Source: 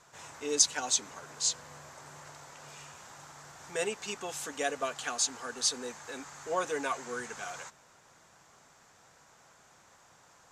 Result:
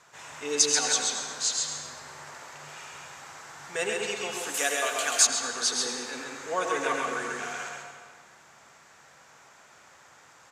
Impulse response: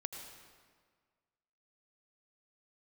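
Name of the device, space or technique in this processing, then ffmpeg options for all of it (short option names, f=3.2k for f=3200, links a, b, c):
PA in a hall: -filter_complex "[0:a]highpass=f=110:p=1,equalizer=f=2.1k:t=o:w=1.6:g=5,aecho=1:1:134:0.631[a];[1:a]atrim=start_sample=2205[b];[a][b]afir=irnorm=-1:irlink=0,asettb=1/sr,asplit=3[c][d][e];[c]atrim=end=4.544[f];[d]atrim=start=4.54:end=5.27,asetpts=PTS-STARTPTS,afade=t=in:d=0.004:c=qsin,afade=t=out:st=0.726:d=0.004:c=qsin,aemphasis=mode=production:type=bsi[g];[e]atrim=start=5.266[h];[f][g]acrossfade=d=0.004:c1=hsin:c2=qsin[i];[i][h]acrossfade=d=0.004:c1=qsin:c2=hsin,volume=3.5dB"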